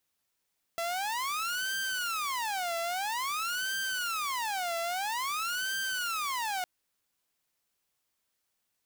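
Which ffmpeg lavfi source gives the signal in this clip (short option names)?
-f lavfi -i "aevalsrc='0.0398*(2*mod((1121*t-449/(2*PI*0.5)*sin(2*PI*0.5*t)),1)-1)':d=5.86:s=44100"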